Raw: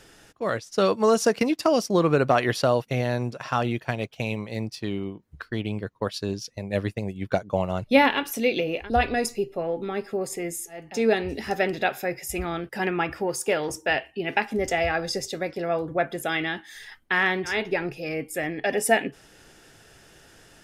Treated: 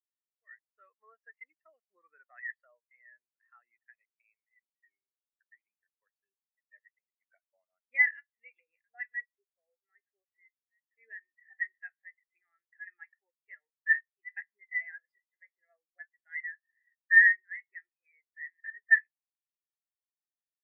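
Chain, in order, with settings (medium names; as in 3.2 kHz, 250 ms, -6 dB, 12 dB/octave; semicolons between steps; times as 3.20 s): band-pass filter 1.9 kHz, Q 6.2; spectral contrast expander 2.5:1; trim +7.5 dB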